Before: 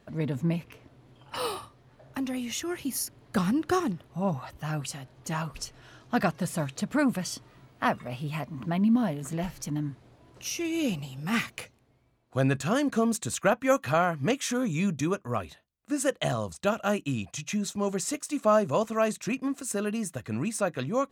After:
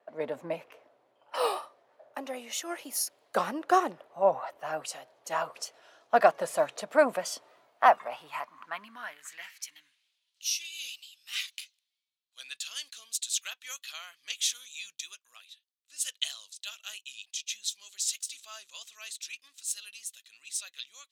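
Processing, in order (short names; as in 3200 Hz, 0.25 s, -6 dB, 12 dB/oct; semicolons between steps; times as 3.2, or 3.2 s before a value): vibrato 3.2 Hz 44 cents; high-pass sweep 590 Hz -> 3500 Hz, 7.58–10.35; three-band expander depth 40%; gain -1.5 dB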